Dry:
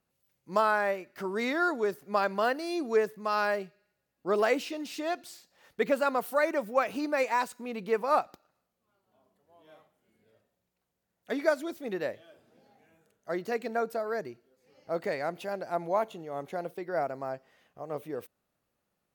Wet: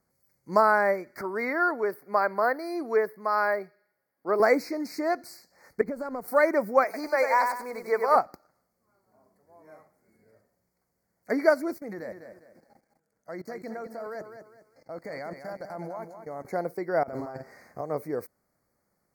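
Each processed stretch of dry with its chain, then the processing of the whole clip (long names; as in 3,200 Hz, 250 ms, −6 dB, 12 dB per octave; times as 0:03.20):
0:01.21–0:04.40: high-pass filter 540 Hz 6 dB per octave + parametric band 6,800 Hz −13.5 dB 0.98 octaves
0:05.81–0:06.28: mu-law and A-law mismatch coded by A + tilt shelving filter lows +6 dB, about 670 Hz + downward compressor 12 to 1, threshold −34 dBFS
0:06.84–0:08.16: high-pass filter 480 Hz + feedback echo at a low word length 96 ms, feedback 35%, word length 9 bits, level −5.5 dB
0:11.78–0:16.45: notch filter 390 Hz, Q 6.3 + output level in coarse steps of 21 dB + feedback echo at a low word length 203 ms, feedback 35%, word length 12 bits, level −8.5 dB
0:17.03–0:17.81: high-pass filter 61 Hz + compressor whose output falls as the input rises −43 dBFS + double-tracking delay 48 ms −4 dB
whole clip: elliptic band-stop filter 2,200–4,400 Hz, stop band 40 dB; dynamic equaliser 7,200 Hz, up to −7 dB, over −58 dBFS, Q 1.3; level +5.5 dB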